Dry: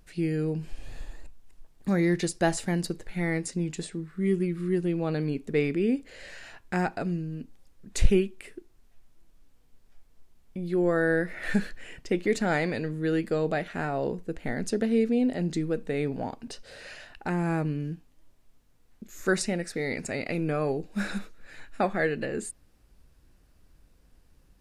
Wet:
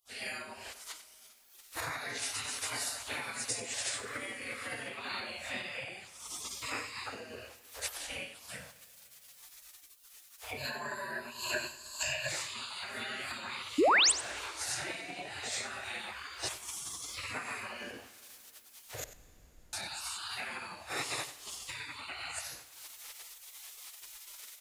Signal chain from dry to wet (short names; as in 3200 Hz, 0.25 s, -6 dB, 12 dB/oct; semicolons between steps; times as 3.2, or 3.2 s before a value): phase scrambler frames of 0.2 s; recorder AGC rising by 48 dB/s; HPF 100 Hz 24 dB/oct; spectral gate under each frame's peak -25 dB weak; 10.57–12.29 ripple EQ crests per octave 1.4, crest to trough 17 dB; 13.78–14.12 painted sound rise 260–9600 Hz -24 dBFS; 19.04–19.73 room tone; echo 93 ms -13.5 dB; plate-style reverb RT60 3.3 s, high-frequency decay 0.95×, DRR 16.5 dB